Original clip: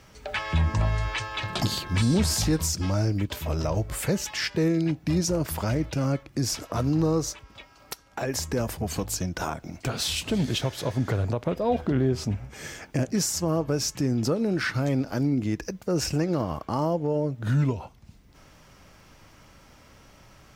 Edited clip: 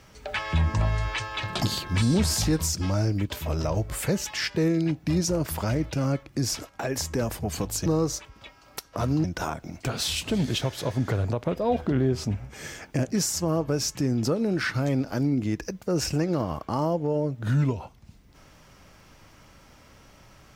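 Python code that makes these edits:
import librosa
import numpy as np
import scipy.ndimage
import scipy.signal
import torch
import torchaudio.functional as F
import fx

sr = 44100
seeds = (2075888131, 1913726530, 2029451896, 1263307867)

y = fx.edit(x, sr, fx.swap(start_s=6.69, length_s=0.31, other_s=8.07, other_length_s=1.17), tone=tone)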